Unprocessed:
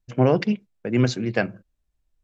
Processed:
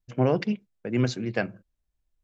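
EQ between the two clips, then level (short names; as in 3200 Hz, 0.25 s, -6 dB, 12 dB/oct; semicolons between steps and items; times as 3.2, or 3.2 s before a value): none; -4.5 dB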